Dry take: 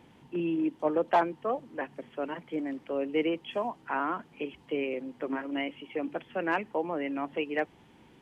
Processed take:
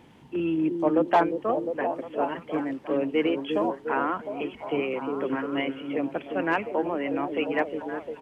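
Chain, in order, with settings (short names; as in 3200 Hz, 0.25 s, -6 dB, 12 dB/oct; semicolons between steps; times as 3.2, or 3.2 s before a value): delay with a stepping band-pass 0.354 s, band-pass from 330 Hz, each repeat 0.7 oct, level -3 dB; harmoniser -12 st -18 dB; gain +3.5 dB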